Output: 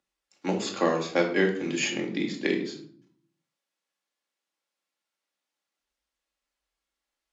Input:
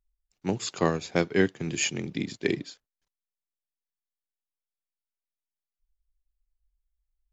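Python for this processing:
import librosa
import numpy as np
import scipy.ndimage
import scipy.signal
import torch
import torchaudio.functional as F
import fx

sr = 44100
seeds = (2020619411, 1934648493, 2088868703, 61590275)

y = scipy.signal.sosfilt(scipy.signal.butter(2, 300.0, 'highpass', fs=sr, output='sos'), x)
y = fx.air_absorb(y, sr, metres=61.0)
y = fx.room_shoebox(y, sr, seeds[0], volume_m3=510.0, walls='furnished', distance_m=2.3)
y = fx.band_squash(y, sr, depth_pct=40)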